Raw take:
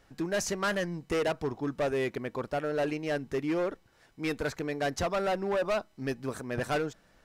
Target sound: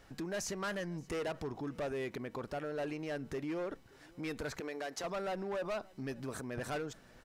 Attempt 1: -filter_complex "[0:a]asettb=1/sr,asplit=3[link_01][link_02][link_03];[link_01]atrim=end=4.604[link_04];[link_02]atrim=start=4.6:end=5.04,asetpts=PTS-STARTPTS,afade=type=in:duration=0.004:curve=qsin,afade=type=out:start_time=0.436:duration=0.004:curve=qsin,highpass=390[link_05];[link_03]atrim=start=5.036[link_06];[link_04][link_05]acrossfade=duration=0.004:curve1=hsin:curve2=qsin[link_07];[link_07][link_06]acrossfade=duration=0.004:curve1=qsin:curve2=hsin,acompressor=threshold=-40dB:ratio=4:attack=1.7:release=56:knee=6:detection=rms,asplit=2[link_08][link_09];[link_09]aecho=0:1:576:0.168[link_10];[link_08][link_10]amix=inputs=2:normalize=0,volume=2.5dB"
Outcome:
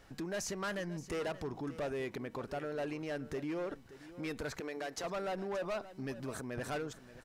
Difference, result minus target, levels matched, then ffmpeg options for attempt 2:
echo-to-direct +9.5 dB
-filter_complex "[0:a]asettb=1/sr,asplit=3[link_01][link_02][link_03];[link_01]atrim=end=4.604[link_04];[link_02]atrim=start=4.6:end=5.04,asetpts=PTS-STARTPTS,afade=type=in:duration=0.004:curve=qsin,afade=type=out:start_time=0.436:duration=0.004:curve=qsin,highpass=390[link_05];[link_03]atrim=start=5.036[link_06];[link_04][link_05]acrossfade=duration=0.004:curve1=hsin:curve2=qsin[link_07];[link_07][link_06]acrossfade=duration=0.004:curve1=qsin:curve2=hsin,acompressor=threshold=-40dB:ratio=4:attack=1.7:release=56:knee=6:detection=rms,asplit=2[link_08][link_09];[link_09]aecho=0:1:576:0.0562[link_10];[link_08][link_10]amix=inputs=2:normalize=0,volume=2.5dB"

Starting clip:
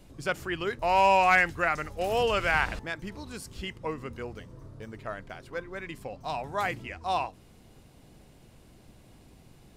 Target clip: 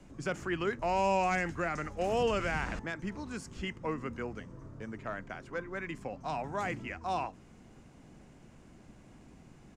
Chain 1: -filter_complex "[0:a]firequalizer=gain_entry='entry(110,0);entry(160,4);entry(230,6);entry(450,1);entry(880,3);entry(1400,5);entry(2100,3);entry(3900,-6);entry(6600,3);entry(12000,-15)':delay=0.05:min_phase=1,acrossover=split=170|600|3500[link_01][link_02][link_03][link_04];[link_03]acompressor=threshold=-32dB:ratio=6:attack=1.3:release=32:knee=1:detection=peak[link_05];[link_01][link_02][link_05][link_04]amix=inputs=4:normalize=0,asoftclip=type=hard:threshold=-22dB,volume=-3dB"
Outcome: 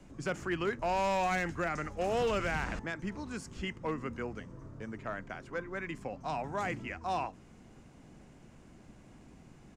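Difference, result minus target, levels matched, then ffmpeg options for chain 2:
hard clipping: distortion +37 dB
-filter_complex "[0:a]firequalizer=gain_entry='entry(110,0);entry(160,4);entry(230,6);entry(450,1);entry(880,3);entry(1400,5);entry(2100,3);entry(3900,-6);entry(6600,3);entry(12000,-15)':delay=0.05:min_phase=1,acrossover=split=170|600|3500[link_01][link_02][link_03][link_04];[link_03]acompressor=threshold=-32dB:ratio=6:attack=1.3:release=32:knee=1:detection=peak[link_05];[link_01][link_02][link_05][link_04]amix=inputs=4:normalize=0,asoftclip=type=hard:threshold=-16dB,volume=-3dB"

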